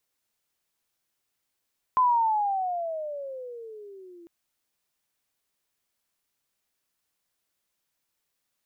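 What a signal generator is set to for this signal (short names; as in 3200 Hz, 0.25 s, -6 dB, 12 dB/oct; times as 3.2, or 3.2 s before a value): gliding synth tone sine, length 2.30 s, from 1030 Hz, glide -19.5 st, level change -28.5 dB, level -17 dB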